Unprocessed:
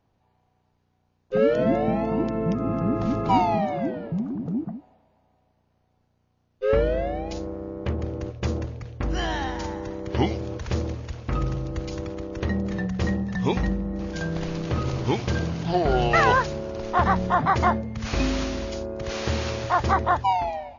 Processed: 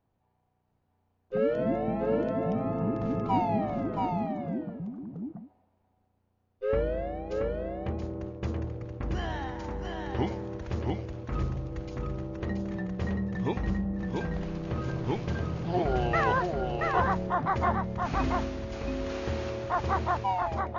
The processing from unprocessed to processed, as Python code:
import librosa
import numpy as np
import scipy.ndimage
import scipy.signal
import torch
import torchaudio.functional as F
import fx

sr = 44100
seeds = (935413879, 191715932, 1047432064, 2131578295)

y = fx.peak_eq(x, sr, hz=5900.0, db=-8.0, octaves=2.0)
y = y + 10.0 ** (-3.5 / 20.0) * np.pad(y, (int(678 * sr / 1000.0), 0))[:len(y)]
y = y * librosa.db_to_amplitude(-6.5)